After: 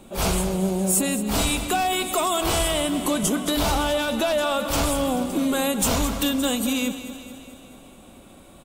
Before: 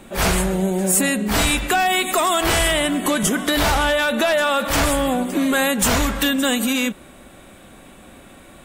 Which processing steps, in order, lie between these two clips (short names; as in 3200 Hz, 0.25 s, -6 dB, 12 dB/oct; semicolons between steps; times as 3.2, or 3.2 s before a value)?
bell 1800 Hz -11 dB 0.63 oct; feedback echo 0.218 s, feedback 59%, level -12.5 dB; gain -3.5 dB